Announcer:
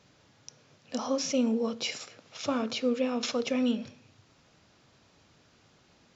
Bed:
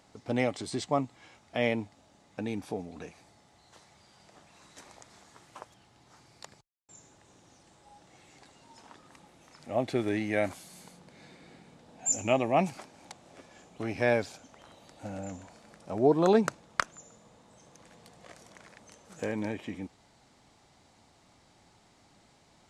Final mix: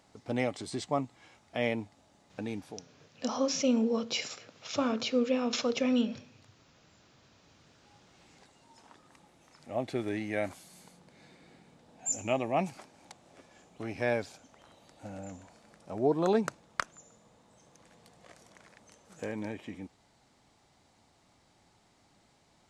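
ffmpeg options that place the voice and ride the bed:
ffmpeg -i stem1.wav -i stem2.wav -filter_complex "[0:a]adelay=2300,volume=0dB[link_01];[1:a]volume=14.5dB,afade=type=out:start_time=2.53:duration=0.33:silence=0.11885,afade=type=in:start_time=7.35:duration=1.21:silence=0.141254[link_02];[link_01][link_02]amix=inputs=2:normalize=0" out.wav

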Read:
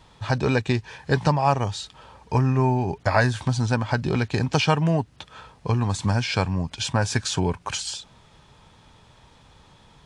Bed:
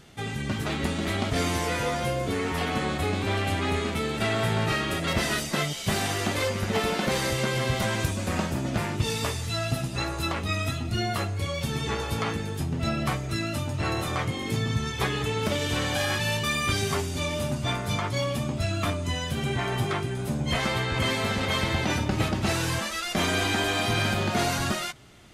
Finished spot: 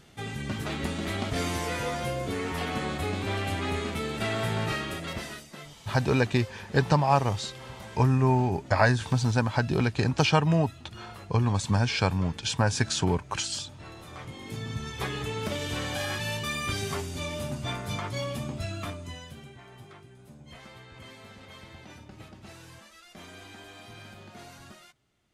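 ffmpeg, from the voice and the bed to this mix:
ffmpeg -i stem1.wav -i stem2.wav -filter_complex "[0:a]adelay=5650,volume=-2dB[link_01];[1:a]volume=9dB,afade=type=out:start_time=4.66:duration=0.79:silence=0.199526,afade=type=in:start_time=14.01:duration=1.12:silence=0.237137,afade=type=out:start_time=18.46:duration=1.07:silence=0.149624[link_02];[link_01][link_02]amix=inputs=2:normalize=0" out.wav

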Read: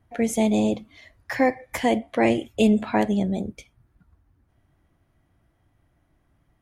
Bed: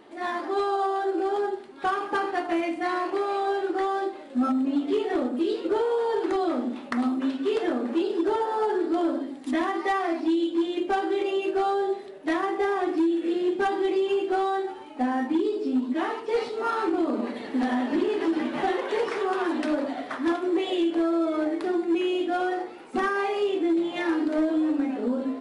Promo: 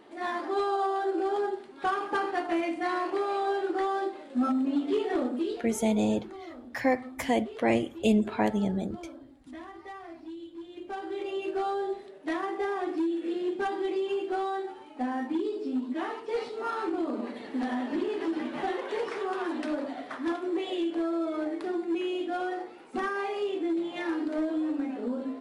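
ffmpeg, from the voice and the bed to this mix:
ffmpeg -i stem1.wav -i stem2.wav -filter_complex "[0:a]adelay=5450,volume=-5dB[link_01];[1:a]volume=10dB,afade=type=out:start_time=5.31:duration=0.45:silence=0.16788,afade=type=in:start_time=10.68:duration=0.83:silence=0.237137[link_02];[link_01][link_02]amix=inputs=2:normalize=0" out.wav

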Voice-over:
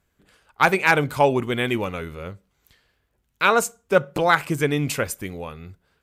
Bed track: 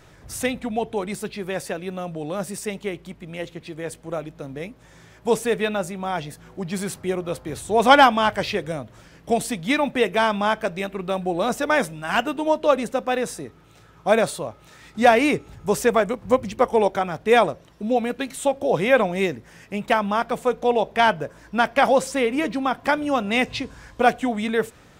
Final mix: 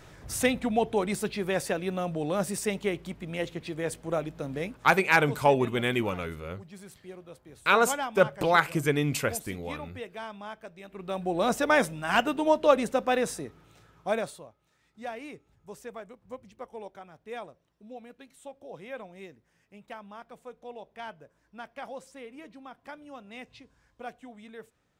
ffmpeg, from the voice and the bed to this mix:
ffmpeg -i stem1.wav -i stem2.wav -filter_complex "[0:a]adelay=4250,volume=-4dB[link_01];[1:a]volume=16.5dB,afade=type=out:start_time=4.72:duration=0.27:silence=0.112202,afade=type=in:start_time=10.83:duration=0.66:silence=0.141254,afade=type=out:start_time=13.3:duration=1.25:silence=0.0944061[link_02];[link_01][link_02]amix=inputs=2:normalize=0" out.wav

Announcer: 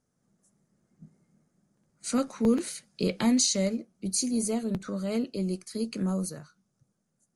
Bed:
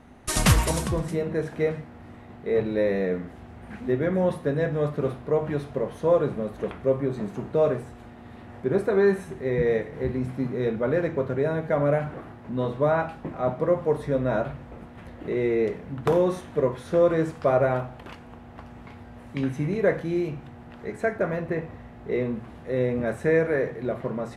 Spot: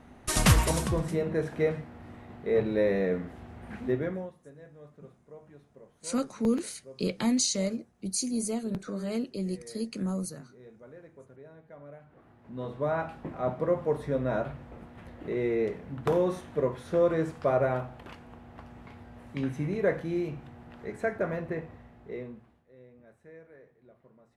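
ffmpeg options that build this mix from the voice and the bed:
ffmpeg -i stem1.wav -i stem2.wav -filter_complex "[0:a]adelay=4000,volume=-2.5dB[link_01];[1:a]volume=19dB,afade=type=out:start_time=3.83:duration=0.48:silence=0.0668344,afade=type=in:start_time=12.07:duration=1.15:silence=0.0891251,afade=type=out:start_time=21.33:duration=1.33:silence=0.0562341[link_02];[link_01][link_02]amix=inputs=2:normalize=0" out.wav

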